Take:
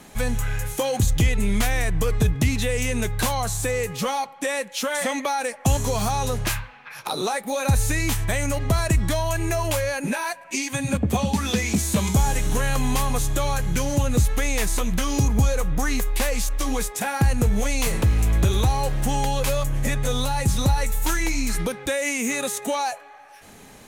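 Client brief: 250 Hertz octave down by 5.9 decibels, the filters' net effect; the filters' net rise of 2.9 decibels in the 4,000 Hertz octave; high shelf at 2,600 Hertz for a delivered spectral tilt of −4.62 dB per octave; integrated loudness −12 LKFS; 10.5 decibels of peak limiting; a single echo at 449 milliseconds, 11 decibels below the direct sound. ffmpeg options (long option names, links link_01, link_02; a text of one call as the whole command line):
ffmpeg -i in.wav -af "equalizer=frequency=250:width_type=o:gain=-8,highshelf=frequency=2600:gain=-5,equalizer=frequency=4000:width_type=o:gain=7.5,alimiter=limit=-20.5dB:level=0:latency=1,aecho=1:1:449:0.282,volume=18dB" out.wav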